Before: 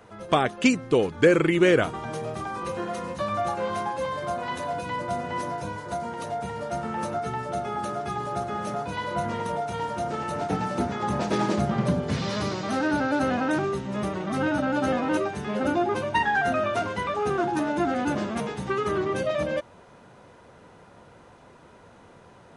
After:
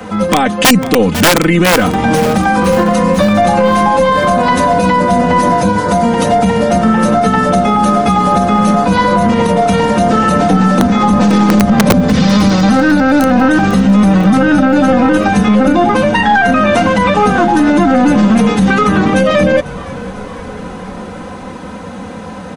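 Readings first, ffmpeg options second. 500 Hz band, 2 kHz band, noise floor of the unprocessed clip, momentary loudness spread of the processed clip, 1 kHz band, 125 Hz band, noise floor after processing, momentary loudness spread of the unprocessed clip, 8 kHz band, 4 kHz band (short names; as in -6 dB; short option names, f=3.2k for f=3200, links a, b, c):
+14.0 dB, +15.0 dB, -52 dBFS, 15 LU, +16.5 dB, +17.5 dB, -26 dBFS, 9 LU, +19.0 dB, +17.0 dB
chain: -filter_complex "[0:a]highpass=72,equalizer=f=190:t=o:w=0.47:g=8.5,aecho=1:1:3.9:0.9,aeval=exprs='0.891*(cos(1*acos(clip(val(0)/0.891,-1,1)))-cos(1*PI/2))+0.0447*(cos(4*acos(clip(val(0)/0.891,-1,1)))-cos(4*PI/2))+0.00501*(cos(6*acos(clip(val(0)/0.891,-1,1)))-cos(6*PI/2))+0.00631*(cos(8*acos(clip(val(0)/0.891,-1,1)))-cos(8*PI/2))':c=same,acrossover=split=140|1100[a][b][c];[a]acontrast=59[d];[d][b][c]amix=inputs=3:normalize=0,aeval=exprs='(mod(2.37*val(0)+1,2)-1)/2.37':c=same,asplit=2[e][f];[f]acompressor=threshold=-28dB:ratio=6,volume=2dB[g];[e][g]amix=inputs=2:normalize=0,asplit=6[h][i][j][k][l][m];[i]adelay=498,afreqshift=-52,volume=-22dB[n];[j]adelay=996,afreqshift=-104,volume=-26.2dB[o];[k]adelay=1494,afreqshift=-156,volume=-30.3dB[p];[l]adelay=1992,afreqshift=-208,volume=-34.5dB[q];[m]adelay=2490,afreqshift=-260,volume=-38.6dB[r];[h][n][o][p][q][r]amix=inputs=6:normalize=0,alimiter=level_in=14dB:limit=-1dB:release=50:level=0:latency=1,volume=-1dB"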